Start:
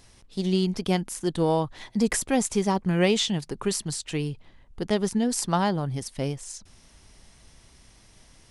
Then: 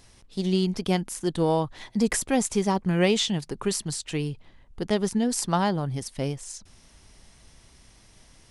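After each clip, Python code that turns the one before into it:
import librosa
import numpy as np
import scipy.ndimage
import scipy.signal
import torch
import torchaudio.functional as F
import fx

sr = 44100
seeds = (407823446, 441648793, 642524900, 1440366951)

y = x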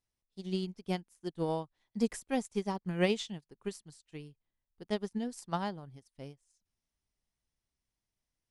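y = fx.upward_expand(x, sr, threshold_db=-38.0, expansion=2.5)
y = y * librosa.db_to_amplitude(-5.0)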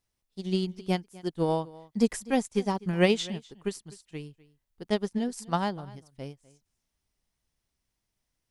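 y = x + 10.0 ** (-21.0 / 20.0) * np.pad(x, (int(250 * sr / 1000.0), 0))[:len(x)]
y = y * librosa.db_to_amplitude(6.5)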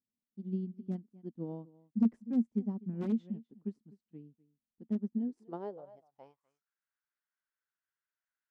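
y = (np.mod(10.0 ** (13.5 / 20.0) * x + 1.0, 2.0) - 1.0) / 10.0 ** (13.5 / 20.0)
y = fx.filter_sweep_bandpass(y, sr, from_hz=230.0, to_hz=1500.0, start_s=5.09, end_s=6.69, q=6.6)
y = y * librosa.db_to_amplitude(3.0)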